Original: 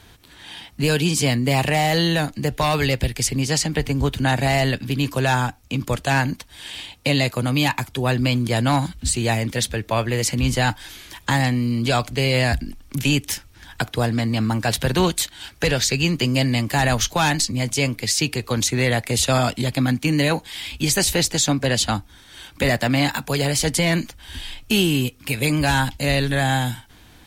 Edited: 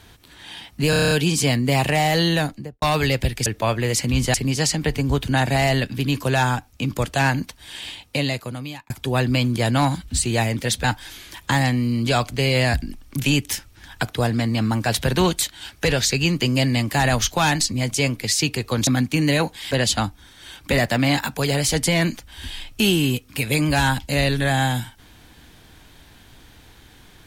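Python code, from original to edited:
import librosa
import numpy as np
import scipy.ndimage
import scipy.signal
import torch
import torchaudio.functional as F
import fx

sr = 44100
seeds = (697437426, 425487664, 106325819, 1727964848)

y = fx.studio_fade_out(x, sr, start_s=2.18, length_s=0.43)
y = fx.edit(y, sr, fx.stutter(start_s=0.9, slice_s=0.03, count=8),
    fx.fade_out_span(start_s=6.8, length_s=1.01),
    fx.move(start_s=9.75, length_s=0.88, to_s=3.25),
    fx.cut(start_s=18.66, length_s=1.12),
    fx.cut(start_s=20.62, length_s=1.0), tone=tone)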